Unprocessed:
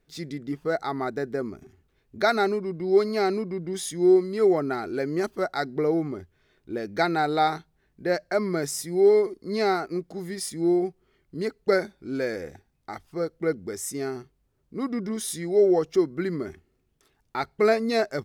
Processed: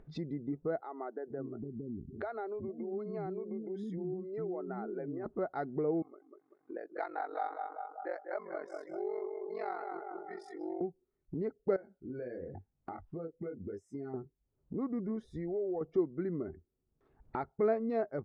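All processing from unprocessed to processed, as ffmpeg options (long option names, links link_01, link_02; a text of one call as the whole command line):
ffmpeg -i in.wav -filter_complex "[0:a]asettb=1/sr,asplit=3[link_01][link_02][link_03];[link_01]atrim=end=0.804[link_04];[link_02]atrim=start=0.8:end=5.26,asetpts=PTS-STARTPTS,afade=type=in:duration=0.004:curve=qsin,afade=type=out:start_time=4.456:duration=0.004:curve=qsin,acompressor=threshold=-34dB:ratio=3:attack=3.2:release=140:knee=1:detection=peak,acrossover=split=320[link_05][link_06];[link_05]adelay=460[link_07];[link_07][link_06]amix=inputs=2:normalize=0,atrim=end_sample=196686[link_08];[link_03]atrim=start=5.256[link_09];[link_04][link_08]acrossfade=duration=0.004:curve1=hsin:curve2=qsin[link_10];[link_10][link_09]acrossfade=duration=0.004:curve1=qsin:curve2=hsin,asettb=1/sr,asplit=3[link_11][link_12][link_13];[link_11]atrim=end=6.024[link_14];[link_12]atrim=start=6.02:end=10.81,asetpts=PTS-STARTPTS,afade=type=in:duration=0.004:curve=qsin,afade=type=out:start_time=4.786:duration=0.004:curve=qsin,highpass=790,aeval=exprs='val(0)*sin(2*PI*23*n/s)':channel_layout=same,asplit=2[link_15][link_16];[link_16]adelay=194,lowpass=frequency=3500:poles=1,volume=-7dB,asplit=2[link_17][link_18];[link_18]adelay=194,lowpass=frequency=3500:poles=1,volume=0.49,asplit=2[link_19][link_20];[link_20]adelay=194,lowpass=frequency=3500:poles=1,volume=0.49,asplit=2[link_21][link_22];[link_22]adelay=194,lowpass=frequency=3500:poles=1,volume=0.49,asplit=2[link_23][link_24];[link_24]adelay=194,lowpass=frequency=3500:poles=1,volume=0.49,asplit=2[link_25][link_26];[link_26]adelay=194,lowpass=frequency=3500:poles=1,volume=0.49[link_27];[link_15][link_17][link_19][link_21][link_23][link_25][link_27]amix=inputs=7:normalize=0,atrim=end_sample=211239[link_28];[link_13]atrim=start=10.806[link_29];[link_14][link_28]acrossfade=duration=0.004:curve1=hsin:curve2=qsin[link_30];[link_30][link_29]acrossfade=duration=0.004:curve1=qsin:curve2=hsin,asettb=1/sr,asplit=3[link_31][link_32][link_33];[link_31]atrim=end=11.764[link_34];[link_32]atrim=start=11.76:end=14.14,asetpts=PTS-STARTPTS,afade=type=in:duration=0.004:curve=qsin,afade=type=out:start_time=2.376:duration=0.004:curve=qsin,highshelf=frequency=3200:gain=10.5,flanger=delay=20:depth=4.6:speed=1,acompressor=threshold=-41dB:ratio=3:attack=3.2:release=140:knee=1:detection=peak[link_35];[link_33]atrim=start=14.136[link_36];[link_34][link_35]acrossfade=duration=0.004:curve1=hsin:curve2=qsin[link_37];[link_37][link_36]acrossfade=duration=0.004:curve1=qsin:curve2=hsin,asettb=1/sr,asplit=3[link_38][link_39][link_40];[link_38]atrim=end=15.244[link_41];[link_39]atrim=start=15.24:end=15.81,asetpts=PTS-STARTPTS,afade=type=in:duration=0.004:curve=qsin,afade=type=out:start_time=0.566:duration=0.004:curve=qsin,lowshelf=frequency=110:width_type=q:width=1.5:gain=12.5,bandreject=frequency=3200:width=14,acompressor=threshold=-32dB:ratio=2:attack=3.2:release=140:knee=1:detection=peak[link_42];[link_40]atrim=start=15.806[link_43];[link_41][link_42]acrossfade=duration=0.004:curve1=hsin:curve2=qsin[link_44];[link_44][link_43]acrossfade=duration=0.004:curve1=qsin:curve2=hsin,afftdn=noise_reduction=21:noise_floor=-46,lowpass=1000,acompressor=mode=upward:threshold=-22dB:ratio=2.5,volume=-8.5dB" out.wav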